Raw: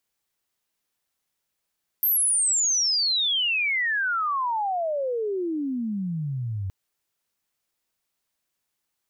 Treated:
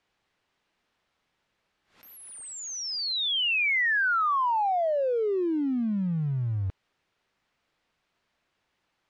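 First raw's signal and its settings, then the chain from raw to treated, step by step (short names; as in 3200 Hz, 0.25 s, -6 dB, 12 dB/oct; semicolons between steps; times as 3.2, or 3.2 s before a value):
chirp logarithmic 13000 Hz -> 92 Hz -18.5 dBFS -> -26.5 dBFS 4.67 s
G.711 law mismatch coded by mu; LPF 3000 Hz 12 dB/oct; backwards sustainer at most 130 dB/s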